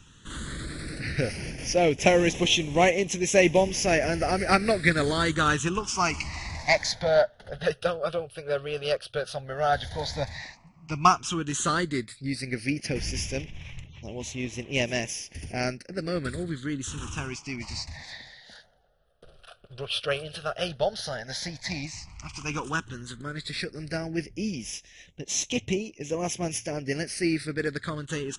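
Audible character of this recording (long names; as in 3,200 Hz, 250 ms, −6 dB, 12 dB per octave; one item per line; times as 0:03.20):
phaser sweep stages 8, 0.088 Hz, lowest notch 270–1,400 Hz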